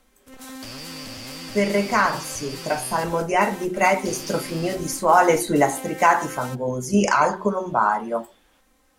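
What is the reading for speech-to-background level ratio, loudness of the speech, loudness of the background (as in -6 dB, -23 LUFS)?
14.5 dB, -21.5 LUFS, -36.0 LUFS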